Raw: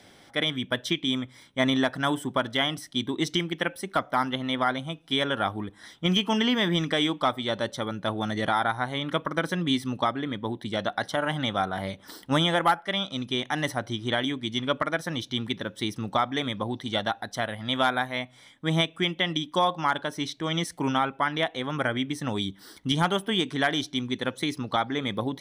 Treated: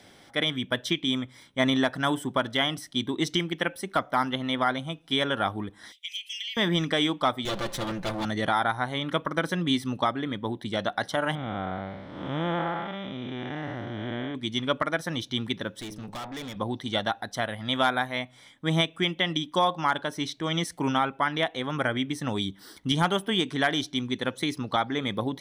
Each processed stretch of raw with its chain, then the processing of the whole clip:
5.92–6.57 steep high-pass 2100 Hz 72 dB/oct + compressor 10:1, threshold -30 dBFS
7.45–8.25 minimum comb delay 5.8 ms + fast leveller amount 50%
11.35–14.35 time blur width 0.317 s + LPF 2200 Hz
15.81–16.56 de-hum 105.2 Hz, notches 9 + tube stage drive 34 dB, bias 0.55
whole clip: dry

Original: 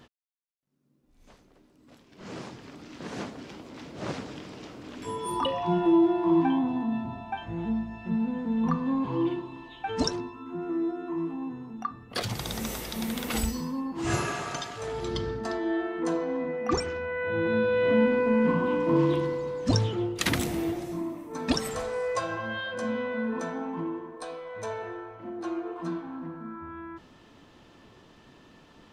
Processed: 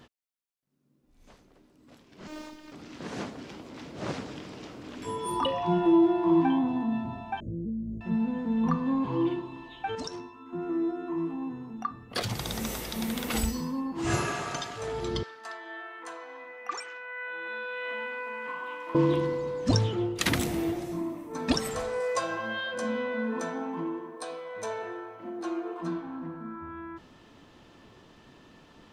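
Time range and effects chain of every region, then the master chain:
2.27–2.72 robotiser 306 Hz + modulation noise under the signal 27 dB
7.4–8.01 tilt shelf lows +8 dB, about 850 Hz + compressor 10:1, threshold -30 dBFS + brick-wall FIR band-stop 640–6600 Hz
9.95–10.53 low shelf 360 Hz -6.5 dB + resonator 90 Hz, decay 0.39 s, mix 40% + compressor 3:1, threshold -33 dBFS
15.23–18.95 HPF 1200 Hz + dynamic EQ 5200 Hz, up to -7 dB, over -56 dBFS, Q 1
22–25.81 HPF 170 Hz + high shelf 4900 Hz +5.5 dB
whole clip: dry

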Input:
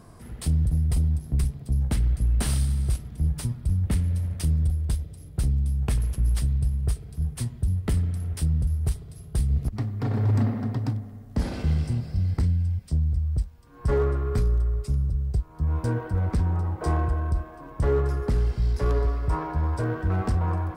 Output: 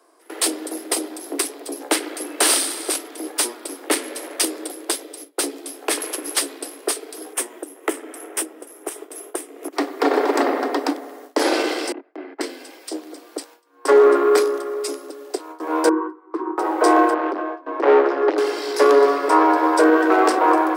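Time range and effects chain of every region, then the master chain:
7.33–9.73 bell 4400 Hz -14.5 dB 0.58 oct + compressor 2:1, threshold -33 dBFS
11.92–12.41 LPF 2200 Hz 24 dB/oct + gate -24 dBFS, range -25 dB + notch 500 Hz, Q 6.4
15.89–16.58 double band-pass 610 Hz, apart 1.6 oct + bell 460 Hz +3.5 dB 0.89 oct
17.14–18.38 hard clip -25.5 dBFS + air absorption 260 m
whole clip: gate with hold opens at -33 dBFS; steep high-pass 290 Hz 96 dB/oct; maximiser +22.5 dB; gain -4 dB

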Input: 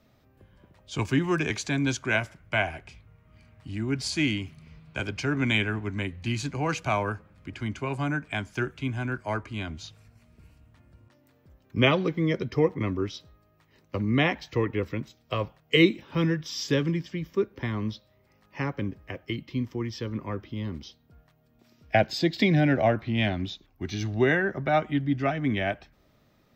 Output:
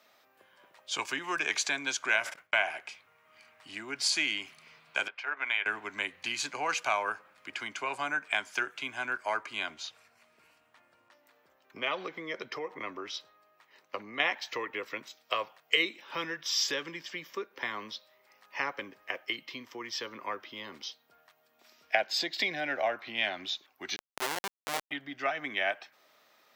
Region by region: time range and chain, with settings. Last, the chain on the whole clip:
2.09–2.73 gate -46 dBFS, range -29 dB + sustainer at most 130 dB/s
5.08–5.66 gate -27 dBFS, range -8 dB + three-band isolator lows -19 dB, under 510 Hz, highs -23 dB, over 3200 Hz + compressor 1.5:1, threshold -40 dBFS
9.74–14.2 high shelf 3700 Hz -6 dB + compressor 2.5:1, threshold -27 dBFS
23.96–24.91 bell 1400 Hz -8.5 dB 1.8 oct + Schmitt trigger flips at -22.5 dBFS
whole clip: compressor 2.5:1, threshold -30 dBFS; HPF 780 Hz 12 dB/oct; gain +6 dB

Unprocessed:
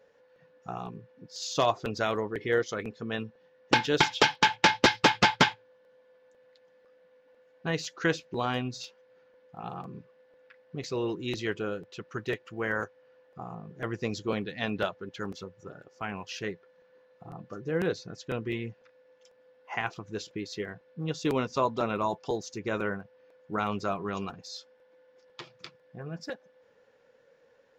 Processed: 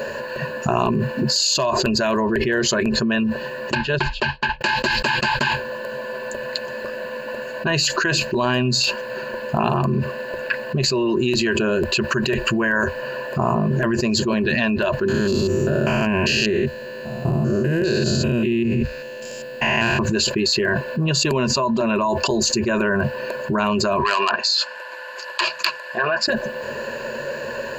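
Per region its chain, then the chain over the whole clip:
3.75–4.61 air absorption 160 m + notch 280 Hz, Q 5.1 + upward expander 2.5:1, over -36 dBFS
15.08–19.99 stepped spectrum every 0.2 s + bell 1100 Hz -10 dB 1.4 oct
24–26.28 treble ducked by the level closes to 2400 Hz, closed at -34 dBFS + Chebyshev high-pass 1000 Hz + core saturation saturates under 3300 Hz
whole clip: ripple EQ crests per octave 1.4, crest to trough 15 dB; fast leveller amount 100%; gain -5.5 dB

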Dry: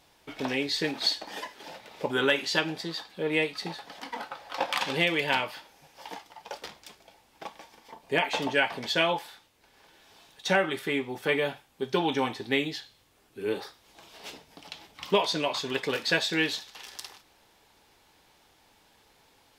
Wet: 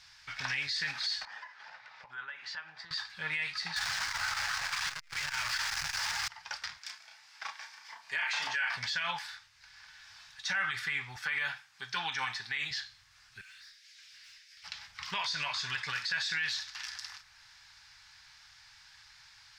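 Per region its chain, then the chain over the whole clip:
1.25–2.91 band-pass 710 Hz, Q 0.82 + compressor 4:1, threshold -42 dBFS
3.76–6.28 infinite clipping + core saturation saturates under 220 Hz
6.78–8.76 HPF 320 Hz + doubler 32 ms -3.5 dB
11.16–12.71 HPF 130 Hz + low shelf 200 Hz -6 dB
13.41–14.64 steep high-pass 1700 Hz + tube stage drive 57 dB, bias 0.3
whole clip: EQ curve 120 Hz 0 dB, 310 Hz -28 dB, 490 Hz -24 dB, 800 Hz -8 dB, 1600 Hz +10 dB, 3200 Hz +3 dB, 5000 Hz +13 dB, 12000 Hz -10 dB; limiter -21 dBFS; dynamic EQ 4300 Hz, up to -5 dB, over -55 dBFS, Q 0.75

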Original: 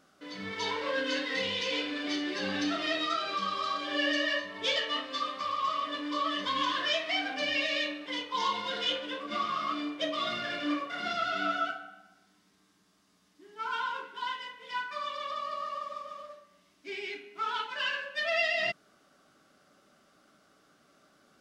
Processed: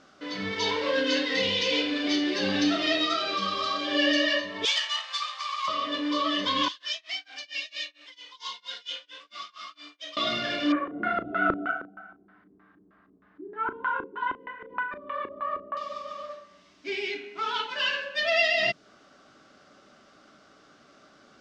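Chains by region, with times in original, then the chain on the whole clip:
4.65–5.68 half-wave gain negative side -7 dB + steep high-pass 780 Hz + high shelf 9000 Hz +11 dB
6.68–10.17 pre-emphasis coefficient 0.97 + tremolo 4.4 Hz, depth 97%
10.72–15.77 LFO low-pass square 3.2 Hz 350–1600 Hz + air absorption 270 m + doubler 36 ms -12.5 dB
whole clip: dynamic EQ 1300 Hz, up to -6 dB, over -44 dBFS, Q 0.81; LPF 6600 Hz 24 dB/oct; bell 170 Hz -5.5 dB 0.22 oct; gain +8 dB

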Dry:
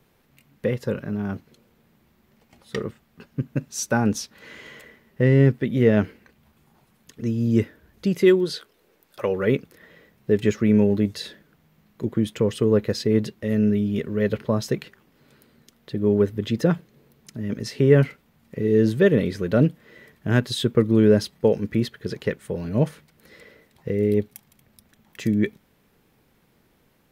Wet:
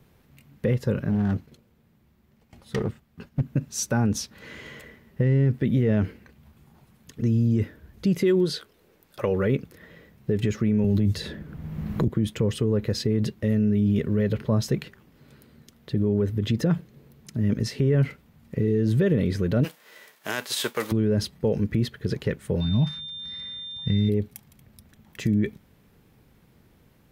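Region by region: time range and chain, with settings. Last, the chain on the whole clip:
1.1–3.41 gate -58 dBFS, range -6 dB + hard clip -23.5 dBFS + Doppler distortion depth 0.17 ms
10.84–12.08 low shelf 270 Hz +8.5 dB + three-band squash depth 70%
19.63–20.91 spectral whitening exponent 0.6 + HPF 560 Hz
22.6–24.08 block floating point 7-bit + EQ curve 220 Hz 0 dB, 490 Hz -20 dB, 740 Hz -2 dB, 5500 Hz -2 dB, 8000 Hz -16 dB + whine 3600 Hz -34 dBFS
whole clip: bell 73 Hz +9.5 dB 2.9 oct; limiter -14 dBFS

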